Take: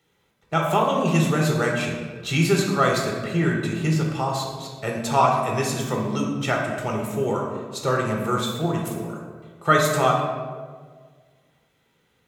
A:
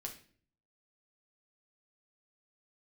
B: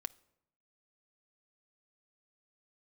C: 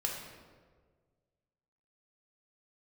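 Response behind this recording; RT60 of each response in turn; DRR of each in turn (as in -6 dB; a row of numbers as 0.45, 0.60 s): C; 0.50 s, not exponential, 1.6 s; 0.5, 11.0, -1.0 dB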